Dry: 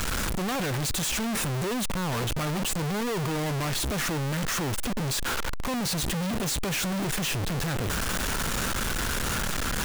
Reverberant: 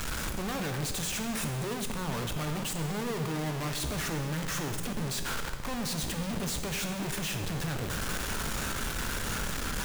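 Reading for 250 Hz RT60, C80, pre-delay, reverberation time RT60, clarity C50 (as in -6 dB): 2.0 s, 9.0 dB, 6 ms, 1.7 s, 7.5 dB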